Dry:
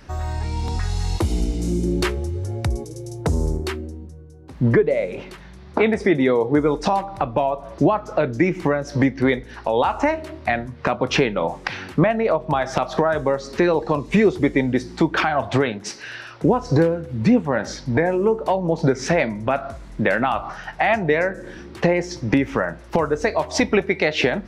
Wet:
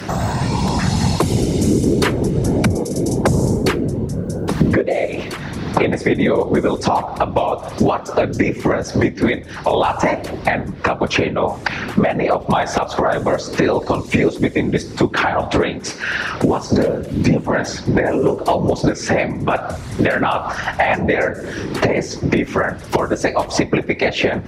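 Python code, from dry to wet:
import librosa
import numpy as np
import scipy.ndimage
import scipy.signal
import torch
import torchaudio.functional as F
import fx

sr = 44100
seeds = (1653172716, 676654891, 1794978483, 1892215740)

p1 = fx.recorder_agc(x, sr, target_db=-6.0, rise_db_per_s=7.6, max_gain_db=30)
p2 = fx.whisperise(p1, sr, seeds[0])
p3 = scipy.signal.sosfilt(scipy.signal.butter(2, 62.0, 'highpass', fs=sr, output='sos'), p2)
p4 = np.clip(p3, -10.0 ** (-9.0 / 20.0), 10.0 ** (-9.0 / 20.0))
p5 = p3 + (p4 * librosa.db_to_amplitude(-12.0))
p6 = fx.high_shelf(p5, sr, hz=5700.0, db=5.0)
p7 = fx.band_squash(p6, sr, depth_pct=70)
y = p7 * librosa.db_to_amplitude(-1.5)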